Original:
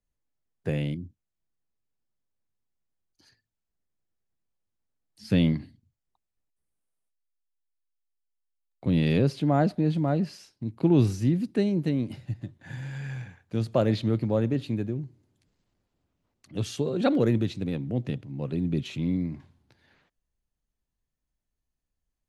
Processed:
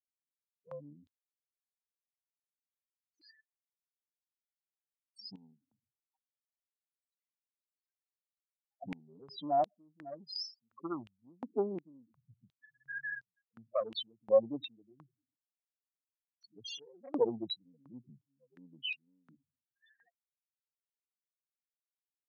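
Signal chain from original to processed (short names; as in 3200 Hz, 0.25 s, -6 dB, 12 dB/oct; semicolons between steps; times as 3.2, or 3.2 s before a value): loudest bins only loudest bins 4; added harmonics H 4 -33 dB, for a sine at -12.5 dBFS; stepped high-pass 2.8 Hz 830–4800 Hz; gain +8 dB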